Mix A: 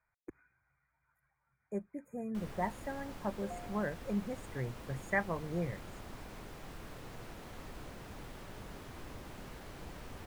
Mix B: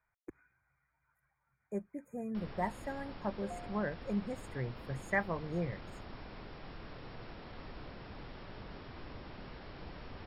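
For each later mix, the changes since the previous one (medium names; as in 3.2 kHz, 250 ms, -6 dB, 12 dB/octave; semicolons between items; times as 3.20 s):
background: add brick-wall FIR low-pass 5.6 kHz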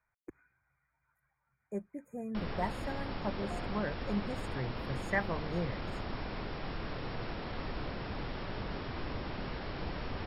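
background +9.0 dB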